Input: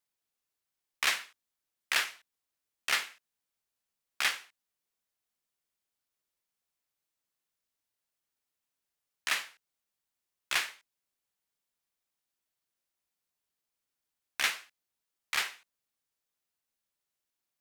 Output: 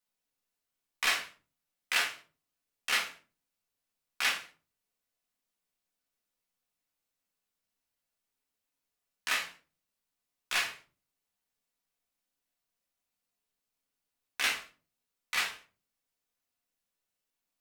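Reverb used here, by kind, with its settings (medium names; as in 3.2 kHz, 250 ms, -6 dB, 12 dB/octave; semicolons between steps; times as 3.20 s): simulated room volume 190 m³, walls furnished, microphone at 1.9 m; trim -3 dB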